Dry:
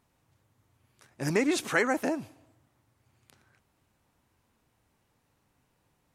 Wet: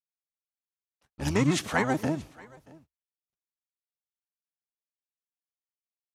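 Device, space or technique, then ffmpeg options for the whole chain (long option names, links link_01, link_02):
octave pedal: -filter_complex "[0:a]asettb=1/sr,asplit=3[link_01][link_02][link_03];[link_01]atrim=end=1.254[link_04];[link_02]atrim=start=1.25:end=1.65,asetpts=PTS-STARTPTS,afade=type=in:duration=0.004:curve=qsin,afade=type=out:start_time=0.396:duration=0.004:curve=qsin,equalizer=frequency=100:width_type=o:width=0.67:gain=-4,equalizer=frequency=250:width_type=o:width=0.67:gain=5,equalizer=frequency=6300:width_type=o:width=0.67:gain=5[link_05];[link_03]atrim=start=1.646[link_06];[link_04][link_05]acrossfade=duration=0.004:curve1=hsin:curve2=qsin[link_07];[link_07][link_06]acrossfade=duration=0.004:curve1=qsin:curve2=hsin,aecho=1:1:629:0.0708,agate=range=-59dB:threshold=-56dB:ratio=16:detection=peak,equalizer=frequency=72:width=5.4:gain=6,asplit=2[link_08][link_09];[link_09]asetrate=22050,aresample=44100,atempo=2,volume=-1dB[link_10];[link_08][link_10]amix=inputs=2:normalize=0,volume=-2.5dB"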